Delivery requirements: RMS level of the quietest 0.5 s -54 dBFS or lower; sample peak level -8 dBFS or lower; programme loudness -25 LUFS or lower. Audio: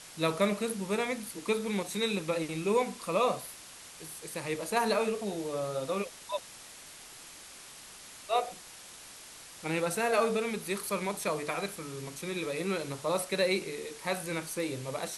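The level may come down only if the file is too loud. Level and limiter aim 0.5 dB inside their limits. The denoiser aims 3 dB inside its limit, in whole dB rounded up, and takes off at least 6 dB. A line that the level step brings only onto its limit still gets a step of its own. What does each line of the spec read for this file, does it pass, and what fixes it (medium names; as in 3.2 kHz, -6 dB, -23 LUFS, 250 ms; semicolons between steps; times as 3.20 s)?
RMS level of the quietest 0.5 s -50 dBFS: fail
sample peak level -14.5 dBFS: pass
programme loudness -32.5 LUFS: pass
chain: noise reduction 7 dB, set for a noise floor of -50 dBFS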